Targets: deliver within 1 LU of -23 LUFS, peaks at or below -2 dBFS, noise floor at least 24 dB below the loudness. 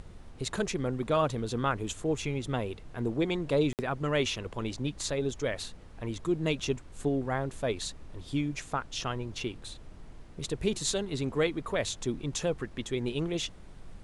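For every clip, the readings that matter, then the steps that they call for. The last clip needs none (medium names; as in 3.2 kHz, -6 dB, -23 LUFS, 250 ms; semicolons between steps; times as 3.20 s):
dropouts 1; longest dropout 58 ms; noise floor -49 dBFS; noise floor target -56 dBFS; loudness -32.0 LUFS; peak level -14.5 dBFS; loudness target -23.0 LUFS
-> interpolate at 3.73 s, 58 ms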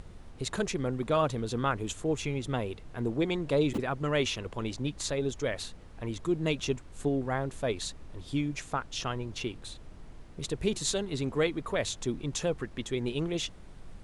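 dropouts 0; noise floor -49 dBFS; noise floor target -56 dBFS
-> noise print and reduce 7 dB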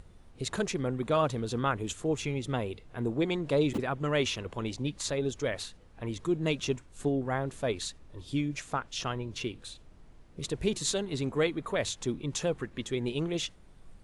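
noise floor -55 dBFS; noise floor target -56 dBFS
-> noise print and reduce 6 dB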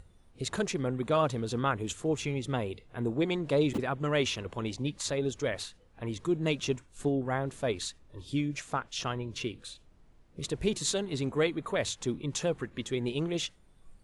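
noise floor -60 dBFS; loudness -32.0 LUFS; peak level -14.5 dBFS; loudness target -23.0 LUFS
-> trim +9 dB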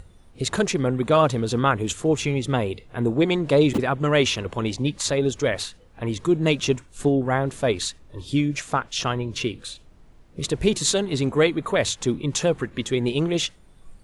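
loudness -23.0 LUFS; peak level -5.5 dBFS; noise floor -51 dBFS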